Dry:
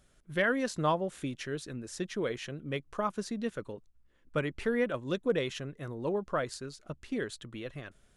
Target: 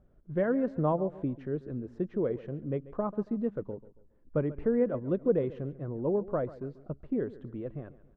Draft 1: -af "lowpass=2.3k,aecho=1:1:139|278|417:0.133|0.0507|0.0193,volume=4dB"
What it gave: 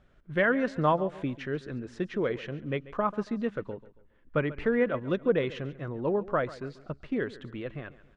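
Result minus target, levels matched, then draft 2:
2000 Hz band +13.5 dB
-af "lowpass=660,aecho=1:1:139|278|417:0.133|0.0507|0.0193,volume=4dB"

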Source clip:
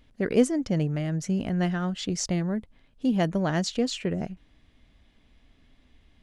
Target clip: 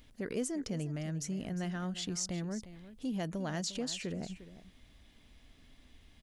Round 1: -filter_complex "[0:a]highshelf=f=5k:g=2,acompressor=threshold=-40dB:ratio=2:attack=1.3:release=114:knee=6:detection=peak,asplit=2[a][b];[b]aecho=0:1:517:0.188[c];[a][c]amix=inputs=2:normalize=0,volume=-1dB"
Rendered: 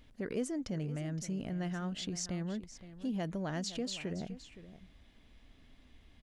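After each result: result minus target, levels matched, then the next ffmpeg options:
echo 0.164 s late; 8000 Hz band -3.0 dB
-filter_complex "[0:a]highshelf=f=5k:g=2,acompressor=threshold=-40dB:ratio=2:attack=1.3:release=114:knee=6:detection=peak,asplit=2[a][b];[b]aecho=0:1:353:0.188[c];[a][c]amix=inputs=2:normalize=0,volume=-1dB"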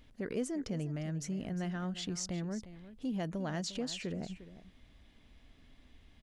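8000 Hz band -3.0 dB
-filter_complex "[0:a]highshelf=f=5k:g=11.5,acompressor=threshold=-40dB:ratio=2:attack=1.3:release=114:knee=6:detection=peak,asplit=2[a][b];[b]aecho=0:1:353:0.188[c];[a][c]amix=inputs=2:normalize=0,volume=-1dB"

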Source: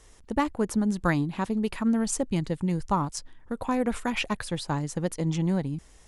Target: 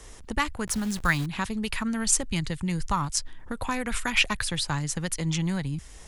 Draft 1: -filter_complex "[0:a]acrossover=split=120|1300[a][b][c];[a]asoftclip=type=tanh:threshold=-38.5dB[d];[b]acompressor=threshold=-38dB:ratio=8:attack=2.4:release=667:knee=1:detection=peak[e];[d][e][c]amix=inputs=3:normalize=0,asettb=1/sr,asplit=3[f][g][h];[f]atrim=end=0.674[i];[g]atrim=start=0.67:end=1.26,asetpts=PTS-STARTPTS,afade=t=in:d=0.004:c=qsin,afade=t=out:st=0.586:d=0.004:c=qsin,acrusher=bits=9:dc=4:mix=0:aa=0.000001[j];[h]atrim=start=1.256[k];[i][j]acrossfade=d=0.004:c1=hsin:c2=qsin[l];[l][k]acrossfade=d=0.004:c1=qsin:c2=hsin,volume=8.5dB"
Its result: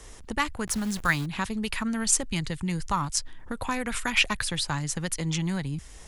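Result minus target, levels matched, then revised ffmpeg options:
soft clip: distortion +13 dB
-filter_complex "[0:a]acrossover=split=120|1300[a][b][c];[a]asoftclip=type=tanh:threshold=-27.5dB[d];[b]acompressor=threshold=-38dB:ratio=8:attack=2.4:release=667:knee=1:detection=peak[e];[d][e][c]amix=inputs=3:normalize=0,asettb=1/sr,asplit=3[f][g][h];[f]atrim=end=0.674[i];[g]atrim=start=0.67:end=1.26,asetpts=PTS-STARTPTS,afade=t=in:d=0.004:c=qsin,afade=t=out:st=0.586:d=0.004:c=qsin,acrusher=bits=9:dc=4:mix=0:aa=0.000001[j];[h]atrim=start=1.256[k];[i][j]acrossfade=d=0.004:c1=hsin:c2=qsin[l];[l][k]acrossfade=d=0.004:c1=qsin:c2=hsin,volume=8.5dB"

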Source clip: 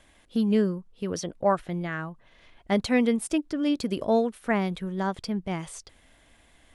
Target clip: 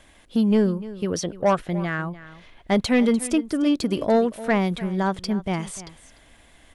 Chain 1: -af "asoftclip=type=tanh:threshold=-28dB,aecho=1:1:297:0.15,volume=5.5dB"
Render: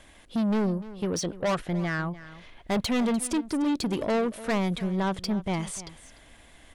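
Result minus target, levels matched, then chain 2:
soft clip: distortion +11 dB
-af "asoftclip=type=tanh:threshold=-16.5dB,aecho=1:1:297:0.15,volume=5.5dB"

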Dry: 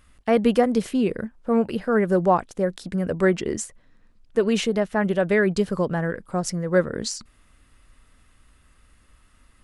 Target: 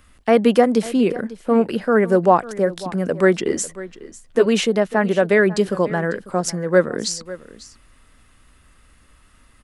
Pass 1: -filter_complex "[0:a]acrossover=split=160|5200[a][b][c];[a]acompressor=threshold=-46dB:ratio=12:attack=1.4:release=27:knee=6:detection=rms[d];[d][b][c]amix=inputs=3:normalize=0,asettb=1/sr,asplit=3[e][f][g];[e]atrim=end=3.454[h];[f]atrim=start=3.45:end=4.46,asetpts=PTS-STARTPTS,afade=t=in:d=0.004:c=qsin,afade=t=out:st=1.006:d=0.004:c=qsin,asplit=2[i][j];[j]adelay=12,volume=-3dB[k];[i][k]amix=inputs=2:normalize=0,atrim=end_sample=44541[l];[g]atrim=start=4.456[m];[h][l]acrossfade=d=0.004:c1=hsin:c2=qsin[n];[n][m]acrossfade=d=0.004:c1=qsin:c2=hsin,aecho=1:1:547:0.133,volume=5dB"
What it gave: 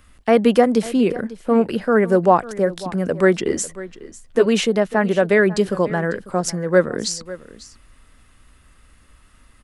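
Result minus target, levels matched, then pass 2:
compressor: peak gain reduction -6.5 dB
-filter_complex "[0:a]acrossover=split=160|5200[a][b][c];[a]acompressor=threshold=-53dB:ratio=12:attack=1.4:release=27:knee=6:detection=rms[d];[d][b][c]amix=inputs=3:normalize=0,asettb=1/sr,asplit=3[e][f][g];[e]atrim=end=3.454[h];[f]atrim=start=3.45:end=4.46,asetpts=PTS-STARTPTS,afade=t=in:d=0.004:c=qsin,afade=t=out:st=1.006:d=0.004:c=qsin,asplit=2[i][j];[j]adelay=12,volume=-3dB[k];[i][k]amix=inputs=2:normalize=0,atrim=end_sample=44541[l];[g]atrim=start=4.456[m];[h][l]acrossfade=d=0.004:c1=hsin:c2=qsin[n];[n][m]acrossfade=d=0.004:c1=qsin:c2=hsin,aecho=1:1:547:0.133,volume=5dB"

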